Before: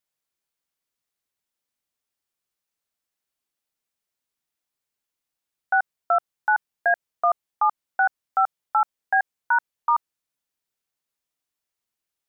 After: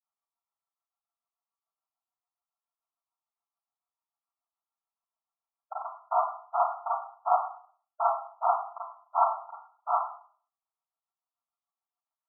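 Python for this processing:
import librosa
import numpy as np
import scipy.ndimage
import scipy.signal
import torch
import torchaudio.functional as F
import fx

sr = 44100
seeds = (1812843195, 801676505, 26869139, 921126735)

y = fx.notch(x, sr, hz=1000.0, q=8.9)
y = fx.noise_vocoder(y, sr, seeds[0], bands=2)
y = fx.granulator(y, sr, seeds[1], grain_ms=95.0, per_s=6.9, spray_ms=23.0, spread_st=0)
y = fx.brickwall_bandpass(y, sr, low_hz=630.0, high_hz=1400.0)
y = fx.rev_schroeder(y, sr, rt60_s=0.49, comb_ms=33, drr_db=-7.0)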